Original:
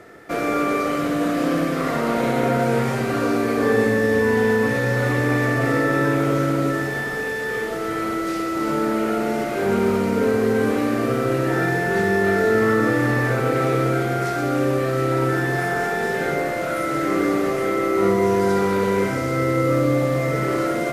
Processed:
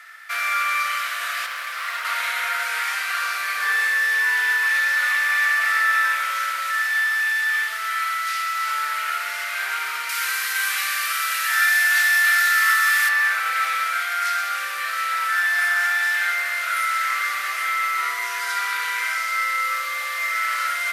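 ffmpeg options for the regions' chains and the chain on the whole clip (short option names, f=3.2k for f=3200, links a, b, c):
-filter_complex "[0:a]asettb=1/sr,asplit=3[a][b][c];[a]atrim=end=1.464[d];[b]atrim=start=1.46:end=2.05,asetpts=PTS-STARTPTS,afade=t=in:d=0.004:c=qsin,afade=t=out:st=0.586:d=0.004:c=qsin,highpass=390,tiltshelf=f=690:g=4.5,asoftclip=type=hard:threshold=-22.5dB[e];[c]atrim=start=2.046[f];[d][e]acrossfade=d=0.004:c1=hsin:c2=qsin[g];[g][f]acrossfade=d=0.004:c1=qsin:c2=hsin,asettb=1/sr,asplit=3[h][i][j];[h]atrim=end=10.094[k];[i]atrim=start=10.09:end=13.09,asetpts=PTS-STARTPTS,afade=t=in:d=0.004:c=qsin,afade=t=out:st=2.996:d=0.004:c=qsin,highpass=f=750:p=1,highshelf=f=3.5k:g=10.5[l];[j]atrim=start=13.086[m];[k][l]acrossfade=d=0.004:c1=hsin:c2=qsin[n];[n][m]acrossfade=d=0.004:c1=qsin:c2=hsin,highpass=f=1.4k:w=0.5412,highpass=f=1.4k:w=1.3066,equalizer=f=7.1k:t=o:w=0.73:g=-4,volume=8dB"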